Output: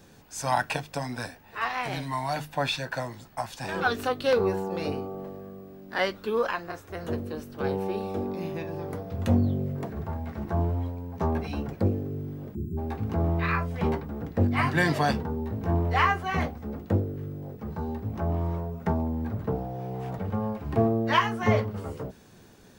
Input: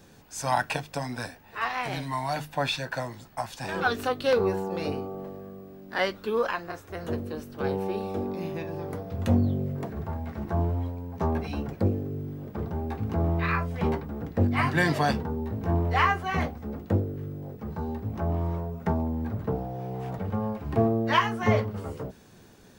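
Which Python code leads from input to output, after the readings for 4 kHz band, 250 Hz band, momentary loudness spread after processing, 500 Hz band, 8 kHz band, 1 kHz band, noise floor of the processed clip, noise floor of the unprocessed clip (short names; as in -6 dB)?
0.0 dB, 0.0 dB, 12 LU, 0.0 dB, 0.0 dB, 0.0 dB, -52 dBFS, -52 dBFS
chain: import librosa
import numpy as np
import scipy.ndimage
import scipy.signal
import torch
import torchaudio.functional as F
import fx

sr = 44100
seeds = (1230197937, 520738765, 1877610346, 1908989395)

y = fx.spec_erase(x, sr, start_s=12.55, length_s=0.23, low_hz=420.0, high_hz=6600.0)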